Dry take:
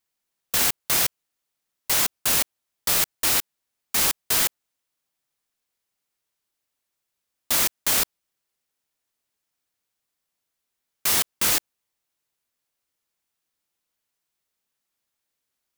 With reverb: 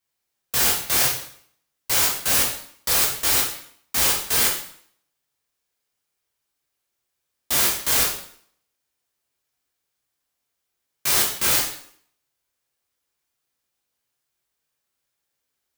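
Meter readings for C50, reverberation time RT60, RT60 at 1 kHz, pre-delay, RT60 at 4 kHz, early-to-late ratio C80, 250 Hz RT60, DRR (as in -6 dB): 5.0 dB, 0.60 s, 0.60 s, 5 ms, 0.55 s, 9.0 dB, 0.65 s, -3.5 dB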